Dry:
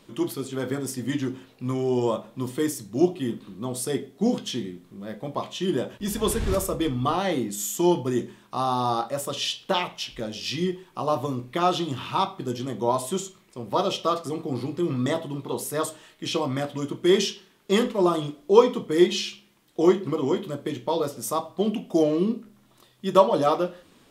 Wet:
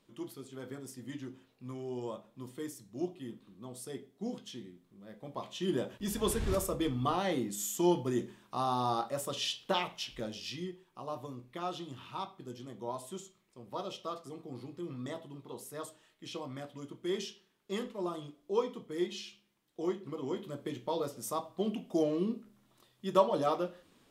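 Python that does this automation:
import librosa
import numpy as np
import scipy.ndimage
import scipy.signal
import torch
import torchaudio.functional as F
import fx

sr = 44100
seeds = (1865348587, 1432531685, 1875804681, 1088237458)

y = fx.gain(x, sr, db=fx.line((5.05, -15.5), (5.69, -7.0), (10.27, -7.0), (10.71, -15.5), (20.01, -15.5), (20.61, -9.0)))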